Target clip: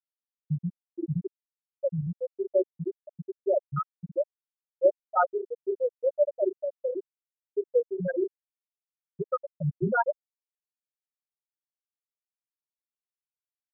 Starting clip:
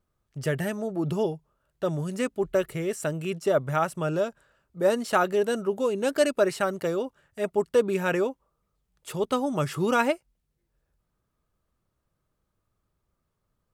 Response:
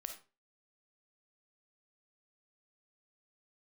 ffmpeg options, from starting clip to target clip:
-filter_complex "[0:a]aecho=1:1:5.6:0.63,acrossover=split=340|2100[link_01][link_02][link_03];[link_01]adelay=40[link_04];[link_03]adelay=90[link_05];[link_04][link_02][link_05]amix=inputs=3:normalize=0,afftfilt=real='re*gte(hypot(re,im),0.501)':imag='im*gte(hypot(re,im),0.501)':win_size=1024:overlap=0.75"

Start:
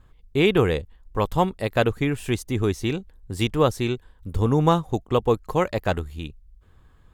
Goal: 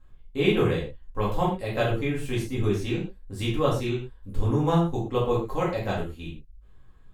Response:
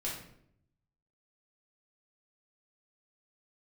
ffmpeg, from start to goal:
-filter_complex "[1:a]atrim=start_sample=2205,afade=type=out:start_time=0.2:duration=0.01,atrim=end_sample=9261,asetrate=48510,aresample=44100[link_01];[0:a][link_01]afir=irnorm=-1:irlink=0,volume=-5.5dB"

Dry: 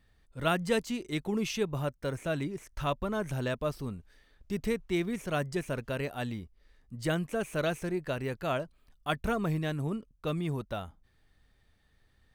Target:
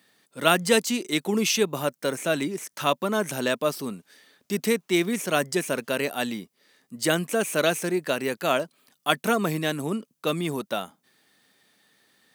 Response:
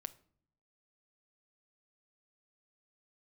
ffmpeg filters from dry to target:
-af "highpass=frequency=190:width=0.5412,highpass=frequency=190:width=1.3066,highshelf=frequency=3900:gain=10.5,volume=7.5dB"

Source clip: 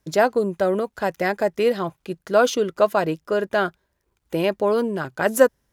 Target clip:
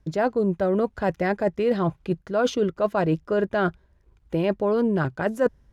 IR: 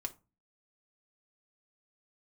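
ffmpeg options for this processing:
-af "aemphasis=mode=reproduction:type=bsi,areverse,acompressor=threshold=-22dB:ratio=6,areverse,volume=3dB"

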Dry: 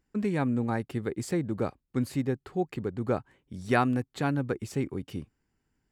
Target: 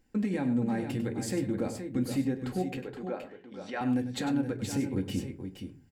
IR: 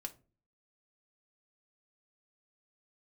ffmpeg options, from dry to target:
-filter_complex "[0:a]equalizer=frequency=1200:width=4:gain=-10,asplit=2[link_01][link_02];[link_02]acompressor=threshold=-35dB:ratio=6,volume=2.5dB[link_03];[link_01][link_03]amix=inputs=2:normalize=0,alimiter=limit=-22dB:level=0:latency=1:release=160,asettb=1/sr,asplit=3[link_04][link_05][link_06];[link_04]atrim=end=2.774[link_07];[link_05]atrim=start=2.77:end=3.81,asetpts=PTS-STARTPTS,afade=type=in:duration=0.004:curve=qsin,afade=type=out:start_time=1.036:duration=0.004:curve=qsin,highpass=460,lowpass=3300[link_08];[link_06]atrim=start=3.806[link_09];[link_07][link_08]acrossfade=duration=0.004:curve1=hsin:curve2=qsin[link_10];[link_10][link_09]acrossfade=duration=0.004:curve1=qsin:curve2=hsin,aecho=1:1:99|472:0.266|0.398[link_11];[1:a]atrim=start_sample=2205[link_12];[link_11][link_12]afir=irnorm=-1:irlink=0,volume=2.5dB"

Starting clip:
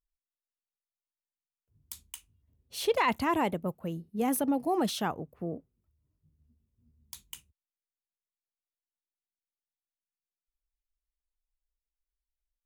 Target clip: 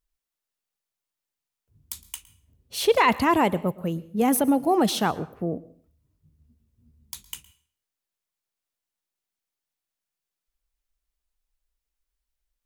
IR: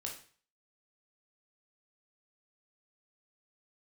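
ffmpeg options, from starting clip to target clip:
-filter_complex "[0:a]asplit=2[link_01][link_02];[1:a]atrim=start_sample=2205,asetrate=40131,aresample=44100,adelay=112[link_03];[link_02][link_03]afir=irnorm=-1:irlink=0,volume=-18.5dB[link_04];[link_01][link_04]amix=inputs=2:normalize=0,volume=7.5dB"

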